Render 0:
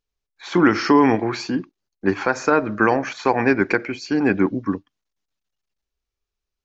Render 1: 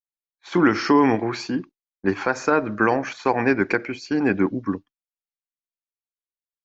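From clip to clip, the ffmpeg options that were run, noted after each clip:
-af "agate=range=-33dB:threshold=-31dB:ratio=3:detection=peak,volume=-2dB"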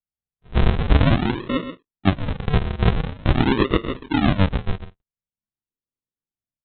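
-af "aecho=1:1:131:0.299,aresample=8000,acrusher=samples=19:mix=1:aa=0.000001:lfo=1:lforange=19:lforate=0.46,aresample=44100,volume=2dB"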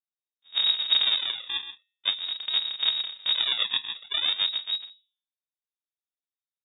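-af "bandreject=f=194.4:t=h:w=4,bandreject=f=388.8:t=h:w=4,bandreject=f=583.2:t=h:w=4,bandreject=f=777.6:t=h:w=4,bandreject=f=972:t=h:w=4,bandreject=f=1.1664k:t=h:w=4,bandreject=f=1.3608k:t=h:w=4,bandreject=f=1.5552k:t=h:w=4,bandreject=f=1.7496k:t=h:w=4,bandreject=f=1.944k:t=h:w=4,lowpass=f=3.2k:t=q:w=0.5098,lowpass=f=3.2k:t=q:w=0.6013,lowpass=f=3.2k:t=q:w=0.9,lowpass=f=3.2k:t=q:w=2.563,afreqshift=-3800,volume=-8.5dB"

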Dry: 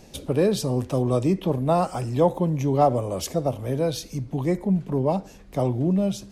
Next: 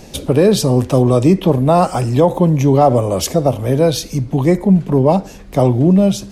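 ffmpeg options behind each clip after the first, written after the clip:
-af "alimiter=level_in=12dB:limit=-1dB:release=50:level=0:latency=1,volume=-1dB"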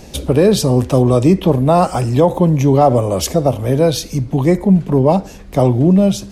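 -af "equalizer=f=65:w=5.3:g=11.5"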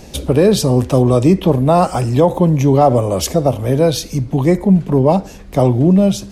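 -af anull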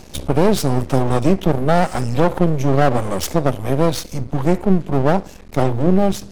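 -af "aeval=exprs='max(val(0),0)':c=same"

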